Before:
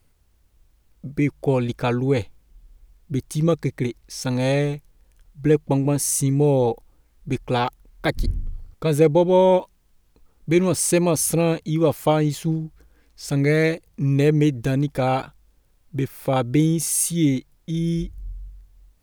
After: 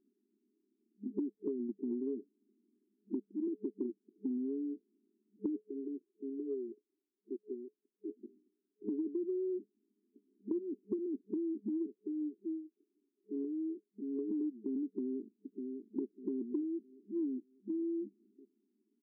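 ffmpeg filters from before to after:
ffmpeg -i in.wav -filter_complex "[0:a]asettb=1/sr,asplit=3[link_01][link_02][link_03];[link_01]atrim=end=5.604[link_04];[link_02]atrim=start=5.6:end=8.89,asetpts=PTS-STARTPTS,afade=type=in:duration=0.004:curve=qsin,afade=type=out:start_time=3.286:duration=0.004:curve=qsin,asuperpass=centerf=920:order=4:qfactor=0.95[link_05];[link_03]atrim=start=8.886[link_06];[link_04][link_05]acrossfade=duration=0.004:curve1=hsin:curve2=qsin[link_07];[link_07][link_06]acrossfade=duration=0.004:curve1=qsin:curve2=hsin,asettb=1/sr,asplit=3[link_08][link_09][link_10];[link_08]atrim=end=11.864[link_11];[link_09]atrim=start=11.86:end=14.31,asetpts=PTS-STARTPTS,afade=type=in:duration=0.004:curve=qsin,afade=type=out:start_time=2.446:duration=0.004:curve=qsin,highpass=560[link_12];[link_10]atrim=start=14.306[link_13];[link_11][link_12]acrossfade=duration=0.004:curve1=hsin:curve2=qsin[link_14];[link_14][link_13]acrossfade=duration=0.004:curve1=qsin:curve2=hsin,asplit=2[link_15][link_16];[link_16]afade=type=in:start_time=14.85:duration=0.01,afade=type=out:start_time=16.05:duration=0.01,aecho=0:1:600|1200|1800|2400:0.211349|0.095107|0.0427982|0.0192592[link_17];[link_15][link_17]amix=inputs=2:normalize=0,afftfilt=real='re*between(b*sr/4096,200,430)':imag='im*between(b*sr/4096,200,430)':win_size=4096:overlap=0.75,acompressor=threshold=-35dB:ratio=12,volume=1dB" out.wav

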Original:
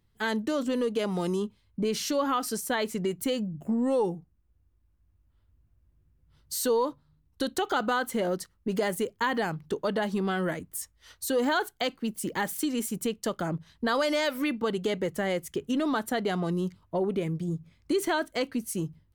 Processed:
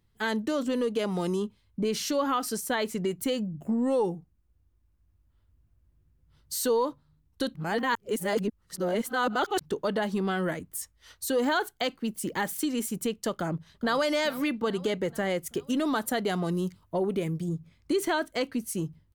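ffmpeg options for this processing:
ffmpeg -i in.wav -filter_complex "[0:a]asplit=2[link_01][link_02];[link_02]afade=type=in:start_time=13.32:duration=0.01,afade=type=out:start_time=14.06:duration=0.01,aecho=0:1:420|840|1260|1680|2100|2520:0.133352|0.0800113|0.0480068|0.0288041|0.0172824|0.0103695[link_03];[link_01][link_03]amix=inputs=2:normalize=0,asettb=1/sr,asplit=3[link_04][link_05][link_06];[link_04]atrim=end=15.464[link_07];[link_05]atrim=start=15.46:end=17.49,asetpts=PTS-STARTPTS,afade=type=in:duration=0.004:curve=qsin,afade=type=out:start_time=2.026:duration=0.004:curve=qsin,highshelf=frequency=6800:gain=8[link_08];[link_06]atrim=start=17.486[link_09];[link_07][link_08]acrossfade=duration=0.004:curve1=hsin:curve2=qsin[link_10];[link_10][link_09]acrossfade=duration=0.004:curve1=qsin:curve2=hsin,asplit=3[link_11][link_12][link_13];[link_11]atrim=end=7.552[link_14];[link_12]atrim=start=7.548:end=9.612,asetpts=PTS-STARTPTS,areverse[link_15];[link_13]atrim=start=9.608[link_16];[link_14][link_15]acrossfade=duration=0.004:curve1=hsin:curve2=hsin[link_17];[link_17][link_16]acrossfade=duration=0.004:curve1=hsin:curve2=hsin" out.wav

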